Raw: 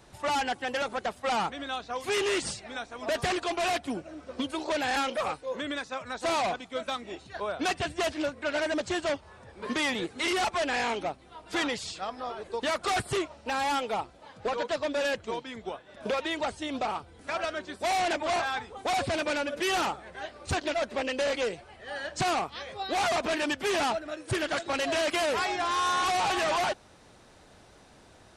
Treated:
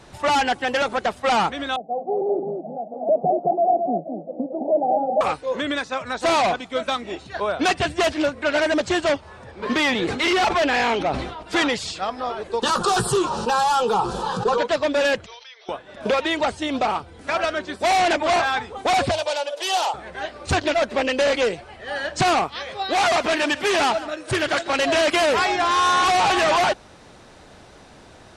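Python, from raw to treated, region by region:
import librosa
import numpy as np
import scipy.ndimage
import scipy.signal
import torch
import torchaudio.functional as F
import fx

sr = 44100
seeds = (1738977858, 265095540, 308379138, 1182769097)

y = fx.chain(x, sr, fx.cheby1_bandpass(low_hz=160.0, high_hz=810.0, order=5),
    fx.comb(ms=1.5, depth=0.45),
    fx.echo_single(ms=213, db=-5.0), at=(1.76, 5.21))
y = fx.chain(y, sr, fx.lowpass(hz=6600.0, slope=12),
    fx.clip_hard(threshold_db=-25.0),
    fx.sustainer(db_per_s=58.0), at=(9.51, 11.43))
y = fx.chain(y, sr, fx.fixed_phaser(hz=420.0, stages=8),
    fx.doubler(ms=17.0, db=-11.5),
    fx.env_flatten(amount_pct=70), at=(12.62, 14.58))
y = fx.chain(y, sr, fx.brickwall_bandpass(low_hz=360.0, high_hz=6200.0),
    fx.differentiator(),
    fx.pre_swell(db_per_s=56.0), at=(15.26, 15.69))
y = fx.chain(y, sr, fx.highpass(hz=560.0, slope=24),
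    fx.band_shelf(hz=1700.0, db=-10.5, octaves=1.3), at=(19.11, 19.94))
y = fx.chain(y, sr, fx.low_shelf(hz=390.0, db=-4.5),
    fx.echo_single(ms=149, db=-16.5), at=(22.48, 24.79))
y = fx.high_shelf(y, sr, hz=11000.0, db=-10.5)
y = fx.hum_notches(y, sr, base_hz=50, count=2)
y = y * 10.0 ** (9.0 / 20.0)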